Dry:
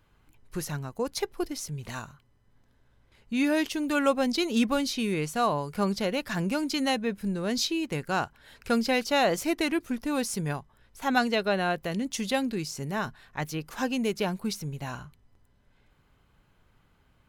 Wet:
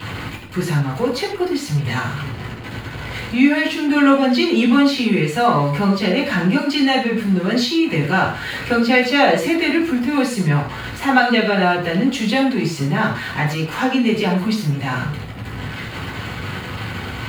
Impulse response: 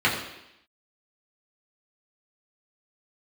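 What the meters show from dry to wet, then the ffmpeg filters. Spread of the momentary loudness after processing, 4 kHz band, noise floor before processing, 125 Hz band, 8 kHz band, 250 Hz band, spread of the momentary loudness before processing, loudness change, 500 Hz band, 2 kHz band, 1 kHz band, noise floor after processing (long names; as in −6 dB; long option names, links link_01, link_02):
13 LU, +10.0 dB, −66 dBFS, +15.0 dB, +2.5 dB, +12.0 dB, 11 LU, +10.5 dB, +9.0 dB, +13.0 dB, +11.0 dB, −30 dBFS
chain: -filter_complex "[0:a]aeval=exprs='val(0)+0.5*0.0178*sgn(val(0))':channel_layout=same,asplit=2[link_01][link_02];[link_02]acompressor=threshold=-37dB:ratio=6,volume=1dB[link_03];[link_01][link_03]amix=inputs=2:normalize=0[link_04];[1:a]atrim=start_sample=2205,afade=type=out:start_time=0.19:duration=0.01,atrim=end_sample=8820[link_05];[link_04][link_05]afir=irnorm=-1:irlink=0,volume=-8.5dB"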